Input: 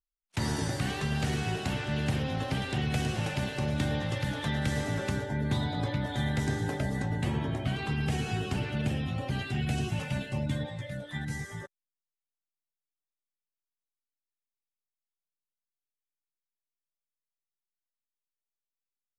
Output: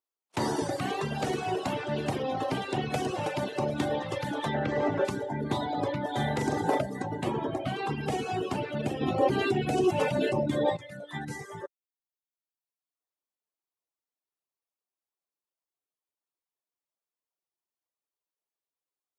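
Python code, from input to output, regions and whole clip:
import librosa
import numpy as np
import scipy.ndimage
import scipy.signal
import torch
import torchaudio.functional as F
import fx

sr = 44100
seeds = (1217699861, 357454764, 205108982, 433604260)

y = fx.chain(x, sr, fx.lowpass(hz=3000.0, slope=12),
    fx.env_flatten(amount_pct=50), at=(4.54, 5.05))
y = fx.chain(y, sr, fx.doubler(ms=42.0, db=-5.0),
    fx.env_flatten(amount_pct=50), at=(6.16, 6.82))
y = fx.chain(y, sr, fx.peak_eq(hz=380.0, db=7.5, octaves=0.83),
    fx.env_flatten(amount_pct=70), at=(9.01, 10.77))
y = scipy.signal.sosfilt(scipy.signal.butter(2, 140.0, 'highpass', fs=sr, output='sos'), y)
y = fx.dereverb_blind(y, sr, rt60_s=1.2)
y = fx.band_shelf(y, sr, hz=580.0, db=9.0, octaves=2.3)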